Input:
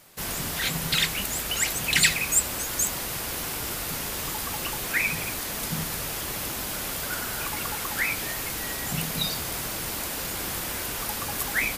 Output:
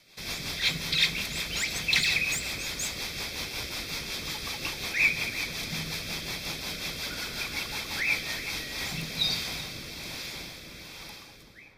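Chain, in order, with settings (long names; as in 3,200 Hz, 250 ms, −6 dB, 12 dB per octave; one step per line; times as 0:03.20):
fade-out on the ending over 2.63 s
high-shelf EQ 6,800 Hz −7 dB
hard clipping −22 dBFS, distortion −13 dB
Butterworth band-reject 2,900 Hz, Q 7.4
flat-topped bell 3,500 Hz +11.5 dB
feedback echo with a low-pass in the loop 378 ms, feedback 62%, low-pass 1,200 Hz, level −6 dB
convolution reverb RT60 1.2 s, pre-delay 37 ms, DRR 11.5 dB
rotating-speaker cabinet horn 5.5 Hz, later 1.2 Hz, at 0:08.21
level −4.5 dB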